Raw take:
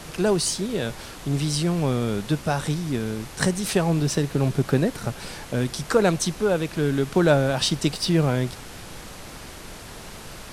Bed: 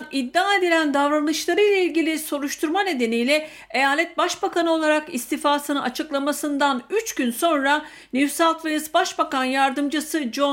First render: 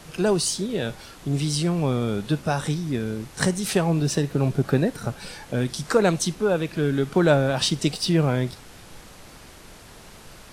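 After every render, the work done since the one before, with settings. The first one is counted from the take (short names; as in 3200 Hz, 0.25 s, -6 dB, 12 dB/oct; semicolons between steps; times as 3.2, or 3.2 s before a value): noise print and reduce 6 dB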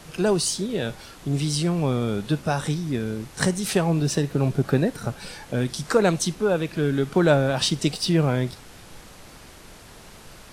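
nothing audible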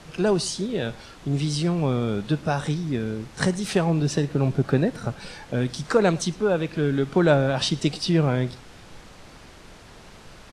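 air absorption 56 m; echo 0.112 s -23.5 dB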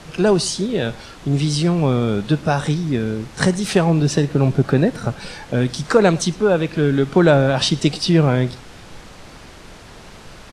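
gain +6 dB; limiter -3 dBFS, peak gain reduction 2.5 dB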